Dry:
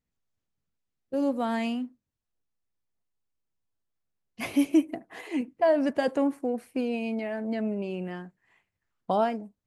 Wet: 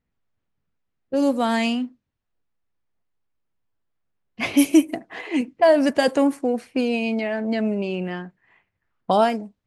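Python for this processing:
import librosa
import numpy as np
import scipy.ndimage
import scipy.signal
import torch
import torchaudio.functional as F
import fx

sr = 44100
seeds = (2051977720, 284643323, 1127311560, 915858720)

y = fx.env_lowpass(x, sr, base_hz=1900.0, full_db=-21.0)
y = fx.high_shelf(y, sr, hz=3200.0, db=11.0)
y = y * librosa.db_to_amplitude(6.5)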